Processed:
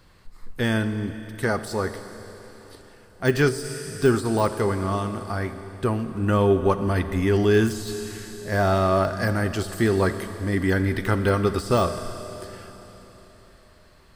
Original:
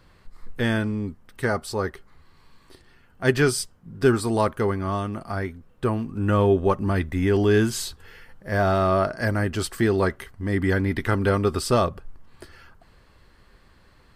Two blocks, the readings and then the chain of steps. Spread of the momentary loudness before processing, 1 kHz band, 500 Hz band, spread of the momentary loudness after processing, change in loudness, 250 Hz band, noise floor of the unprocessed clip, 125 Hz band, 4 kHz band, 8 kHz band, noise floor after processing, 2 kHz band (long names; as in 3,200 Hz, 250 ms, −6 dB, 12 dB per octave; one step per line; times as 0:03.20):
10 LU, 0.0 dB, +0.5 dB, 14 LU, 0.0 dB, +0.5 dB, −55 dBFS, +0.5 dB, −0.5 dB, −2.5 dB, −52 dBFS, 0.0 dB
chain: bass and treble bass 0 dB, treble +5 dB
four-comb reverb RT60 4 s, combs from 28 ms, DRR 10 dB
de-essing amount 65%